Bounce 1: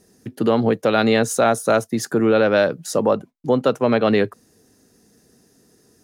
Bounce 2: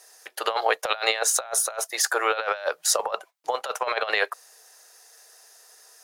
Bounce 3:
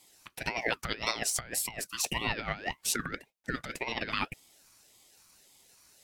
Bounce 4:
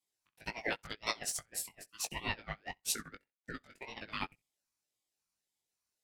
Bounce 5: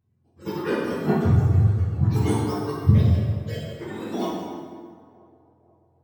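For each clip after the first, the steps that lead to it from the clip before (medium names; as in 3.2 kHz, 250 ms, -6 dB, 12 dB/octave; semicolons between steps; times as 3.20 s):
inverse Chebyshev high-pass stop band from 260 Hz, stop band 50 dB; compressor with a negative ratio -28 dBFS, ratio -0.5; trim +4 dB
ring modulator with a swept carrier 1.1 kHz, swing 40%, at 1.8 Hz; trim -5.5 dB
flutter echo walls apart 11.2 m, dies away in 0.23 s; chorus 2 Hz, delay 18.5 ms, depth 2.5 ms; upward expansion 2.5:1, over -48 dBFS; trim +1.5 dB
spectrum inverted on a logarithmic axis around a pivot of 910 Hz; band-passed feedback delay 486 ms, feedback 56%, band-pass 610 Hz, level -20 dB; plate-style reverb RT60 1.9 s, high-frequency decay 0.65×, DRR -6.5 dB; trim +6.5 dB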